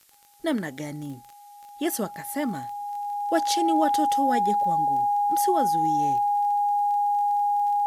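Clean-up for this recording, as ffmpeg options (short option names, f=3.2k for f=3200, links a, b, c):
-af "adeclick=t=4,bandreject=f=820:w=30,agate=range=-21dB:threshold=-39dB"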